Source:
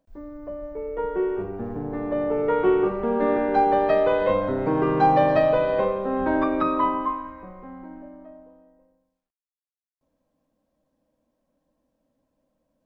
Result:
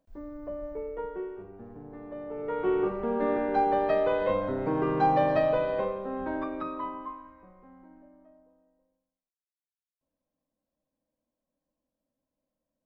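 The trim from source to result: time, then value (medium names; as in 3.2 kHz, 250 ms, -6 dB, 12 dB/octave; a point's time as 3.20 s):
0.74 s -2.5 dB
1.36 s -14.5 dB
2.25 s -14.5 dB
2.80 s -5.5 dB
5.57 s -5.5 dB
6.81 s -13 dB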